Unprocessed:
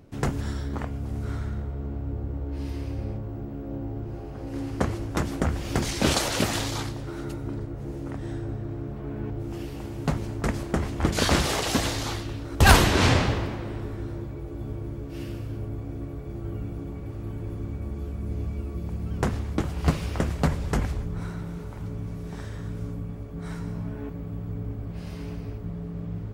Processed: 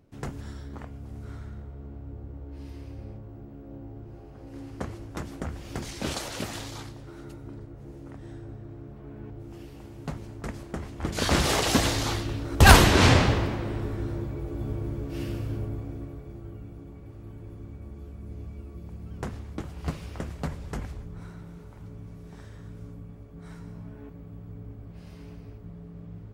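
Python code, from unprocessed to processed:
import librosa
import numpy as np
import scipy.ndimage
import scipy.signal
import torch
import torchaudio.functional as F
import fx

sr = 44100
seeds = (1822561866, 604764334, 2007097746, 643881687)

y = fx.gain(x, sr, db=fx.line((10.97, -9.0), (11.5, 2.0), (15.53, 2.0), (16.58, -9.0)))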